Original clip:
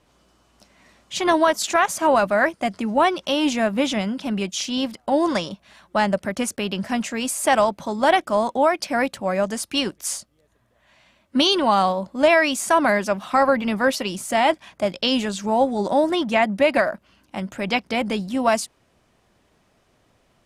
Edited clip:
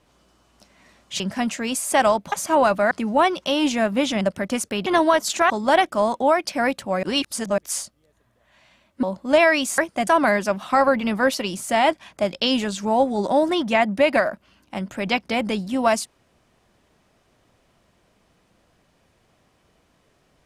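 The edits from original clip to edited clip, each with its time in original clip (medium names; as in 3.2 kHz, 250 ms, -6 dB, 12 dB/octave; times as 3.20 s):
1.20–1.84 s: swap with 6.73–7.85 s
2.43–2.72 s: move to 12.68 s
4.02–6.08 s: delete
9.38–9.93 s: reverse
11.38–11.93 s: delete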